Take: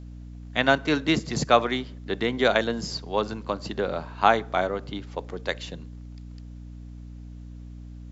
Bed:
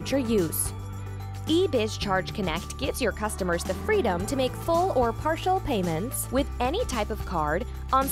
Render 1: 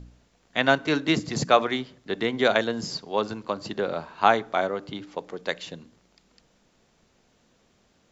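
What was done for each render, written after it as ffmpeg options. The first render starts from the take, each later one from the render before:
-af "bandreject=f=60:t=h:w=4,bandreject=f=120:t=h:w=4,bandreject=f=180:t=h:w=4,bandreject=f=240:t=h:w=4,bandreject=f=300:t=h:w=4"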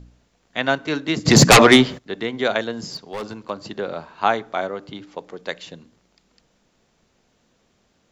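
-filter_complex "[0:a]asplit=3[a][b][c];[a]afade=t=out:st=1.25:d=0.02[d];[b]aeval=exprs='0.631*sin(PI/2*5.62*val(0)/0.631)':c=same,afade=t=in:st=1.25:d=0.02,afade=t=out:st=1.97:d=0.02[e];[c]afade=t=in:st=1.97:d=0.02[f];[d][e][f]amix=inputs=3:normalize=0,asettb=1/sr,asplit=3[g][h][i];[g]atrim=end=2.854[j];[h]atrim=start=2.85:end=3.5,asetpts=PTS-STARTPTS,afade=t=in:d=0.004:c=qsin,afade=t=out:st=0.646:d=0.004:c=qsin,asoftclip=type=hard:threshold=-25dB[k];[i]atrim=start=3.496[l];[j][k]acrossfade=d=0.004:c1=hsin:c2=qsin[m];[m][l]acrossfade=d=0.004:c1=qsin:c2=hsin"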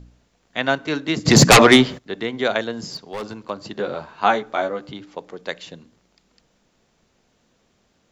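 -filter_complex "[0:a]asettb=1/sr,asplit=3[a][b][c];[a]atrim=end=3.764[d];[b]atrim=start=3.76:end=4.92,asetpts=PTS-STARTPTS,afade=t=in:d=0.004:c=qsin,afade=t=out:st=1.156:d=0.004:c=qsin,asplit=2[e][f];[f]adelay=14,volume=-3.5dB[g];[e][g]amix=inputs=2:normalize=0,atrim=end_sample=51156[h];[c]atrim=start=4.916[i];[d][h]acrossfade=d=0.004:c1=hsin:c2=qsin[j];[j][i]acrossfade=d=0.004:c1=qsin:c2=hsin"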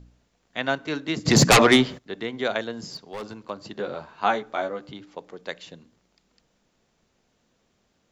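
-af "volume=-5dB"

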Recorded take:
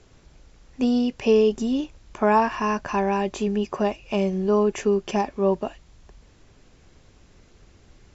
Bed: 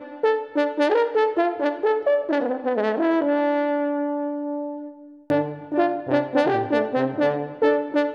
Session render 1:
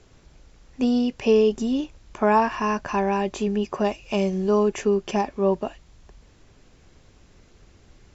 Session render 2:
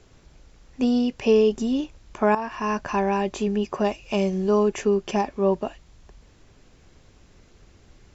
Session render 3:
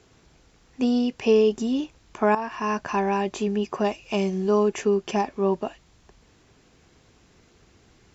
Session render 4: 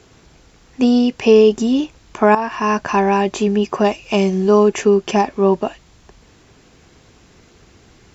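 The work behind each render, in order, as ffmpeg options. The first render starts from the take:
-filter_complex "[0:a]asettb=1/sr,asplit=3[a][b][c];[a]atrim=end=3.844[d];[b]atrim=start=3.84:end=4.69,asetpts=PTS-STARTPTS,afade=t=in:d=0.004:c=qsin,afade=t=out:st=0.846:d=0.004:c=qsin,highshelf=f=6k:g=10[e];[c]atrim=start=4.686[f];[d][e]acrossfade=d=0.004:c1=hsin:c2=qsin[g];[g][f]acrossfade=d=0.004:c1=qsin:c2=hsin"
-filter_complex "[0:a]asplit=2[a][b];[a]atrim=end=2.35,asetpts=PTS-STARTPTS,afade=t=out:st=2.346:d=0.004:c=hsin:silence=0.211349[c];[b]atrim=start=2.35,asetpts=PTS-STARTPTS,afade=t=in:d=0.42:silence=0.211349[d];[c][d]concat=n=2:v=0:a=1"
-af "highpass=f=120:p=1,bandreject=f=570:w=12"
-af "volume=8.5dB,alimiter=limit=-2dB:level=0:latency=1"

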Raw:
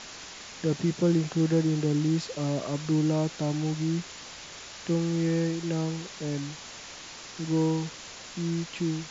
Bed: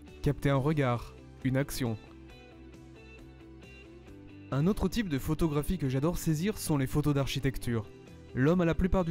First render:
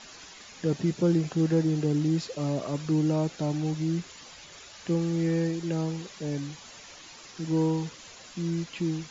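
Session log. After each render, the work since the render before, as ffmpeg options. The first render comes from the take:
-af "afftdn=nr=9:nf=-44"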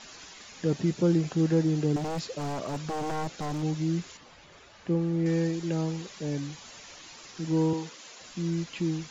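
-filter_complex "[0:a]asettb=1/sr,asplit=3[a][b][c];[a]atrim=end=1.964[d];[b]atrim=start=1.96:end=3.63,asetpts=PTS-STARTPTS,afade=t=in:d=0.004:c=qsin,afade=t=out:st=1.666:d=0.004:c=qsin,aeval=exprs='0.0501*(abs(mod(val(0)/0.0501+3,4)-2)-1)':c=same[e];[c]atrim=start=3.626[f];[d][e]acrossfade=d=0.004:c1=hsin:c2=qsin[g];[g][f]acrossfade=d=0.004:c1=qsin:c2=hsin,asettb=1/sr,asplit=3[h][i][j];[h]atrim=end=4.174[k];[i]atrim=start=4.17:end=5.26,asetpts=PTS-STARTPTS,afade=t=in:d=0.004:c=qsin,afade=t=out:st=1.086:d=0.004:c=qsin,lowpass=f=1.5k:p=1[l];[j]atrim=start=5.256[m];[k][l]acrossfade=d=0.004:c1=hsin:c2=qsin[n];[n][m]acrossfade=d=0.004:c1=qsin:c2=hsin,asettb=1/sr,asplit=3[o][p][q];[o]atrim=end=7.734[r];[p]atrim=start=7.73:end=8.21,asetpts=PTS-STARTPTS,afade=t=in:d=0.004:c=qsin,afade=t=out:st=0.476:d=0.004:c=qsin,highpass=250[s];[q]atrim=start=8.206[t];[r][s]acrossfade=d=0.004:c1=hsin:c2=qsin[u];[u][t]acrossfade=d=0.004:c1=qsin:c2=hsin"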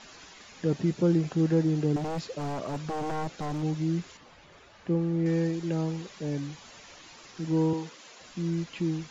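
-af "highshelf=f=4.1k:g=-6.5"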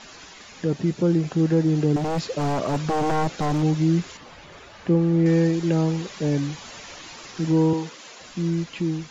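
-filter_complex "[0:a]asplit=2[a][b];[b]alimiter=limit=-23dB:level=0:latency=1:release=448,volume=-1dB[c];[a][c]amix=inputs=2:normalize=0,dynaudnorm=f=390:g=9:m=4dB"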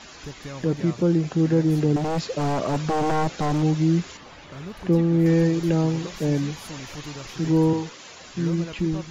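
-filter_complex "[1:a]volume=-9.5dB[a];[0:a][a]amix=inputs=2:normalize=0"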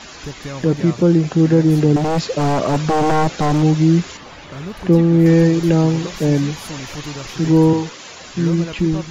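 -af "volume=7dB,alimiter=limit=-3dB:level=0:latency=1"

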